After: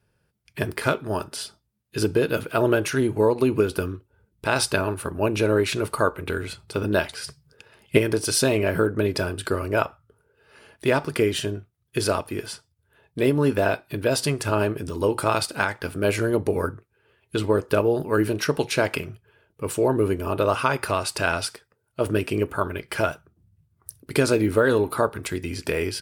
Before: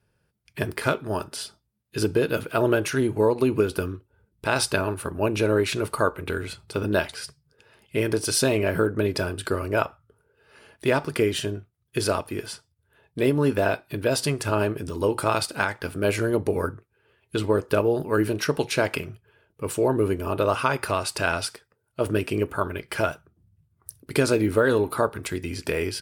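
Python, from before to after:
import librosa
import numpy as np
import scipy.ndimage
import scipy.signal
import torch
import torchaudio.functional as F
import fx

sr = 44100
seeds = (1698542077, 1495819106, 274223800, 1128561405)

y = fx.transient(x, sr, attack_db=10, sustain_db=6, at=(7.24, 7.97), fade=0.02)
y = y * librosa.db_to_amplitude(1.0)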